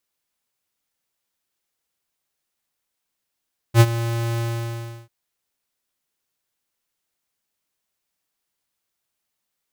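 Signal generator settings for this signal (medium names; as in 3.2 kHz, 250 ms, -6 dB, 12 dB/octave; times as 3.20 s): ADSR square 116 Hz, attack 65 ms, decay 49 ms, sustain -15 dB, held 0.65 s, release 693 ms -8.5 dBFS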